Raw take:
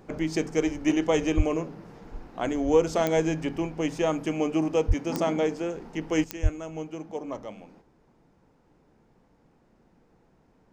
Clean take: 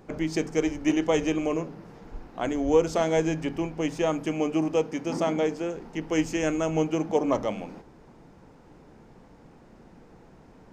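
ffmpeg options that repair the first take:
-filter_complex "[0:a]adeclick=t=4,asplit=3[a][b][c];[a]afade=t=out:st=1.36:d=0.02[d];[b]highpass=f=140:w=0.5412,highpass=f=140:w=1.3066,afade=t=in:st=1.36:d=0.02,afade=t=out:st=1.48:d=0.02[e];[c]afade=t=in:st=1.48:d=0.02[f];[d][e][f]amix=inputs=3:normalize=0,asplit=3[g][h][i];[g]afade=t=out:st=4.87:d=0.02[j];[h]highpass=f=140:w=0.5412,highpass=f=140:w=1.3066,afade=t=in:st=4.87:d=0.02,afade=t=out:st=4.99:d=0.02[k];[i]afade=t=in:st=4.99:d=0.02[l];[j][k][l]amix=inputs=3:normalize=0,asplit=3[m][n][o];[m]afade=t=out:st=6.42:d=0.02[p];[n]highpass=f=140:w=0.5412,highpass=f=140:w=1.3066,afade=t=in:st=6.42:d=0.02,afade=t=out:st=6.54:d=0.02[q];[o]afade=t=in:st=6.54:d=0.02[r];[p][q][r]amix=inputs=3:normalize=0,asetnsamples=n=441:p=0,asendcmd='6.24 volume volume 10.5dB',volume=0dB"

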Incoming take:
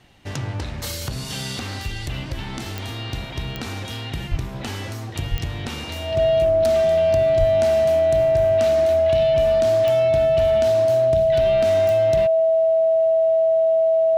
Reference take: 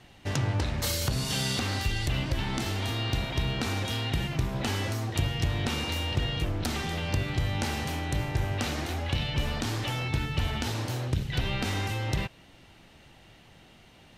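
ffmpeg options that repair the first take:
-filter_complex "[0:a]adeclick=t=4,bandreject=f=650:w=30,asplit=3[a][b][c];[a]afade=t=out:st=4.3:d=0.02[d];[b]highpass=f=140:w=0.5412,highpass=f=140:w=1.3066,afade=t=in:st=4.3:d=0.02,afade=t=out:st=4.42:d=0.02[e];[c]afade=t=in:st=4.42:d=0.02[f];[d][e][f]amix=inputs=3:normalize=0,asplit=3[g][h][i];[g]afade=t=out:st=5.3:d=0.02[j];[h]highpass=f=140:w=0.5412,highpass=f=140:w=1.3066,afade=t=in:st=5.3:d=0.02,afade=t=out:st=5.42:d=0.02[k];[i]afade=t=in:st=5.42:d=0.02[l];[j][k][l]amix=inputs=3:normalize=0,asplit=3[m][n][o];[m]afade=t=out:st=7.39:d=0.02[p];[n]highpass=f=140:w=0.5412,highpass=f=140:w=1.3066,afade=t=in:st=7.39:d=0.02,afade=t=out:st=7.51:d=0.02[q];[o]afade=t=in:st=7.51:d=0.02[r];[p][q][r]amix=inputs=3:normalize=0"

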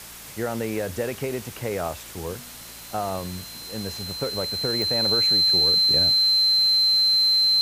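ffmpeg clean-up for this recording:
-af "adeclick=t=4,bandreject=f=56.9:t=h:w=4,bandreject=f=113.8:t=h:w=4,bandreject=f=170.7:t=h:w=4,bandreject=f=227.6:t=h:w=4,bandreject=f=4.1k:w=30,afwtdn=0.01"

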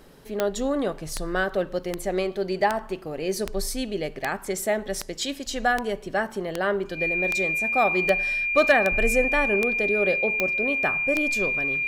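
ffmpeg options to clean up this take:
-af "adeclick=t=4,bandreject=f=2.4k:w=30"

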